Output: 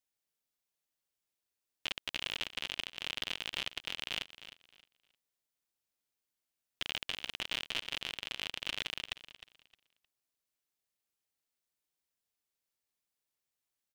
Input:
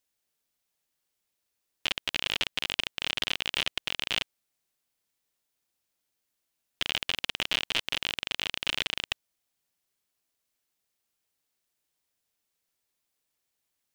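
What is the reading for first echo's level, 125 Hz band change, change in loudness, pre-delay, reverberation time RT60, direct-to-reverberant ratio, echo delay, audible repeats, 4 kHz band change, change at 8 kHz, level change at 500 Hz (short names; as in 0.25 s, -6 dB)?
-14.0 dB, -8.0 dB, -8.0 dB, none, none, none, 0.309 s, 2, -8.0 dB, -8.0 dB, -8.0 dB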